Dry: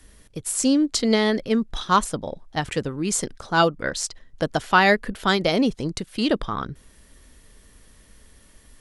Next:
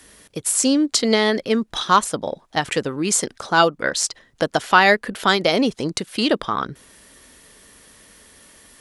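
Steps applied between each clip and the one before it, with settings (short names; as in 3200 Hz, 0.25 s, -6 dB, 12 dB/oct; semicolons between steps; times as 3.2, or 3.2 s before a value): HPF 330 Hz 6 dB/oct; in parallel at 0 dB: compressor, threshold -28 dBFS, peak gain reduction 15.5 dB; on the sum: gain +2 dB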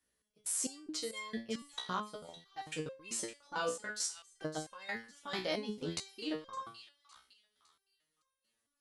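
level quantiser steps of 24 dB; thin delay 0.56 s, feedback 31%, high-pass 2500 Hz, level -11 dB; stepped resonator 4.5 Hz 62–530 Hz; gain -2.5 dB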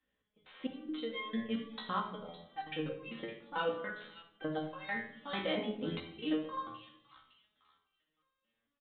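shoebox room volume 1900 m³, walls furnished, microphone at 2.1 m; downsampling 8000 Hz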